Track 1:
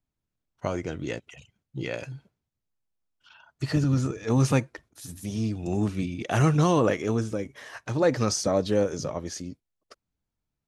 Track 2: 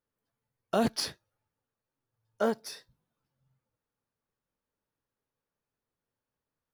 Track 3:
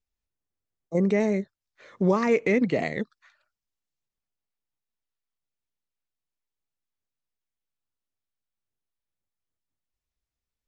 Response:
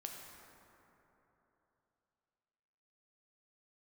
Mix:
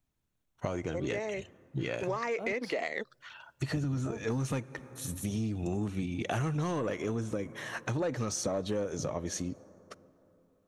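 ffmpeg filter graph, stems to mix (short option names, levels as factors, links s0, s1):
-filter_complex "[0:a]bandreject=f=4900:w=5.1,volume=1.33,asplit=2[s0][s1];[s1]volume=0.141[s2];[1:a]highshelf=f=8000:g=-6,acrossover=split=1100[s3][s4];[s3]aeval=exprs='val(0)*(1-0.7/2+0.7/2*cos(2*PI*1.2*n/s))':c=same[s5];[s4]aeval=exprs='val(0)*(1-0.7/2-0.7/2*cos(2*PI*1.2*n/s))':c=same[s6];[s5][s6]amix=inputs=2:normalize=0,adelay=1650,volume=0.473[s7];[2:a]highpass=530,dynaudnorm=f=460:g=11:m=2.99,volume=0.794[s8];[3:a]atrim=start_sample=2205[s9];[s2][s9]afir=irnorm=-1:irlink=0[s10];[s0][s7][s8][s10]amix=inputs=4:normalize=0,asoftclip=type=tanh:threshold=0.237,acompressor=threshold=0.0316:ratio=6"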